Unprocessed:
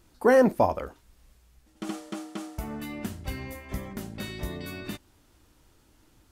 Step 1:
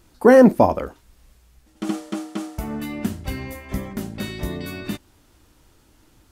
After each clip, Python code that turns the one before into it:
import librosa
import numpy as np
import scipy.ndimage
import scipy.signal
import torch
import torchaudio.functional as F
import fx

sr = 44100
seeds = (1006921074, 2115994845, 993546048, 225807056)

y = fx.dynamic_eq(x, sr, hz=240.0, q=0.75, threshold_db=-38.0, ratio=4.0, max_db=6)
y = F.gain(torch.from_numpy(y), 5.0).numpy()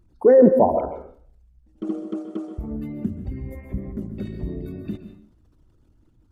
y = fx.envelope_sharpen(x, sr, power=2.0)
y = fx.rev_plate(y, sr, seeds[0], rt60_s=0.55, hf_ratio=0.8, predelay_ms=115, drr_db=8.0)
y = F.gain(torch.from_numpy(y), -2.0).numpy()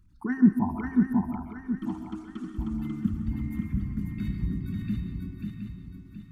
y = scipy.signal.sosfilt(scipy.signal.cheby1(2, 1.0, [220.0, 1300.0], 'bandstop', fs=sr, output='sos'), x)
y = fx.echo_swing(y, sr, ms=722, ratio=3, feedback_pct=40, wet_db=-4)